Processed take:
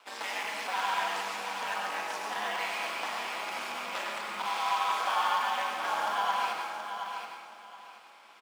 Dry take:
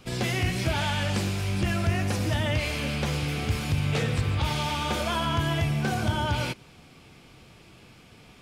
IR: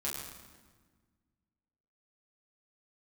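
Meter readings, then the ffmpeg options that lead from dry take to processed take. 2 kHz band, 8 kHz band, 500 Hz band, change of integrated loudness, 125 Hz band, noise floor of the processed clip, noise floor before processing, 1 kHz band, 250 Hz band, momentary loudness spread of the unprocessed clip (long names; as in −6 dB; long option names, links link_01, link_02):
−1.5 dB, −5.5 dB, −7.5 dB, −5.0 dB, below −35 dB, −54 dBFS, −53 dBFS, +3.5 dB, −21.5 dB, 2 LU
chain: -filter_complex "[0:a]highshelf=frequency=9700:gain=-7,asplit=2[link_01][link_02];[link_02]acrusher=samples=8:mix=1:aa=0.000001,volume=-11dB[link_03];[link_01][link_03]amix=inputs=2:normalize=0,aeval=exprs='val(0)*sin(2*PI*100*n/s)':channel_layout=same,asoftclip=type=hard:threshold=-22.5dB,highpass=frequency=920:width_type=q:width=2.2,aecho=1:1:725|1450|2175:0.422|0.101|0.0243,asplit=2[link_04][link_05];[1:a]atrim=start_sample=2205,adelay=96[link_06];[link_05][link_06]afir=irnorm=-1:irlink=0,volume=-5dB[link_07];[link_04][link_07]amix=inputs=2:normalize=0,volume=-3.5dB"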